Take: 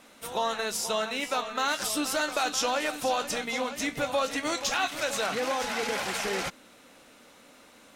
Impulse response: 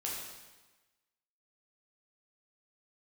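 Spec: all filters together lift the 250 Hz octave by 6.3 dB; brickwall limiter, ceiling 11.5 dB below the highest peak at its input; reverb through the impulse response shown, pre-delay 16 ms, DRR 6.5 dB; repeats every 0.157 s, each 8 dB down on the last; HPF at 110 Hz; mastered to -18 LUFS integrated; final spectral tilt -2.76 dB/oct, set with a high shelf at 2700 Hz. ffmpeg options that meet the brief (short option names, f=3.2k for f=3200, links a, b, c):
-filter_complex "[0:a]highpass=110,equalizer=f=250:t=o:g=7.5,highshelf=f=2.7k:g=6.5,alimiter=limit=-23dB:level=0:latency=1,aecho=1:1:157|314|471|628|785:0.398|0.159|0.0637|0.0255|0.0102,asplit=2[a][b];[1:a]atrim=start_sample=2205,adelay=16[c];[b][c]afir=irnorm=-1:irlink=0,volume=-8.5dB[d];[a][d]amix=inputs=2:normalize=0,volume=12dB"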